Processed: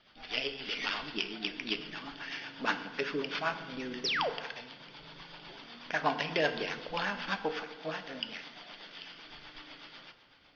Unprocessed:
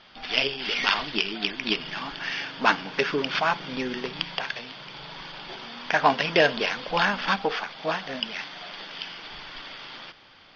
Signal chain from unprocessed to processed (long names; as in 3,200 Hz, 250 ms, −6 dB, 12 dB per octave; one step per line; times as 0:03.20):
rotating-speaker cabinet horn 8 Hz
sound drawn into the spectrogram fall, 0:04.04–0:04.30, 400–6,100 Hz −24 dBFS
feedback delay network reverb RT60 1.3 s, low-frequency decay 1.25×, high-frequency decay 0.55×, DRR 8.5 dB
level −7.5 dB